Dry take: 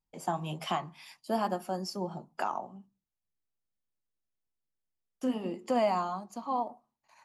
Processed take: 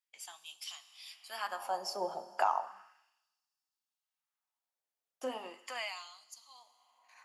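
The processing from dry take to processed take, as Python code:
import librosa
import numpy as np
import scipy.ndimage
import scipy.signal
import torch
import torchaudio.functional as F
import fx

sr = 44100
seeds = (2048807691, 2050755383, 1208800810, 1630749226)

y = fx.rev_schroeder(x, sr, rt60_s=2.1, comb_ms=31, drr_db=13.5)
y = fx.filter_lfo_highpass(y, sr, shape='sine', hz=0.35, low_hz=560.0, high_hz=4700.0, q=1.5)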